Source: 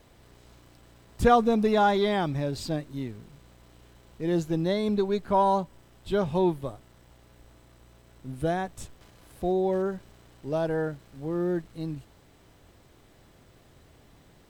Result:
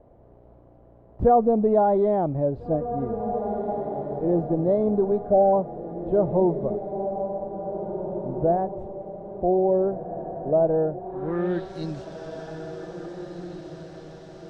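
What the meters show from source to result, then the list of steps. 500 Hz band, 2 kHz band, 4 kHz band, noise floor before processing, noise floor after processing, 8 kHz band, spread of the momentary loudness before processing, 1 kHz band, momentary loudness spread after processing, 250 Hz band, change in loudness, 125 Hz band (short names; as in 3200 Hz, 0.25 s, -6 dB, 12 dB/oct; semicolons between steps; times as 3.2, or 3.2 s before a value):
+6.0 dB, n/a, under -10 dB, -58 dBFS, -52 dBFS, under -10 dB, 16 LU, +2.0 dB, 17 LU, +2.5 dB, +3.0 dB, +2.5 dB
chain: spectral repair 5.3–5.51, 850–8400 Hz before; in parallel at +2.5 dB: limiter -18.5 dBFS, peak gain reduction 10.5 dB; on the sum: diffused feedback echo 1.826 s, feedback 42%, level -8 dB; low-pass sweep 640 Hz -> 5500 Hz, 10.98–11.71; gain -6 dB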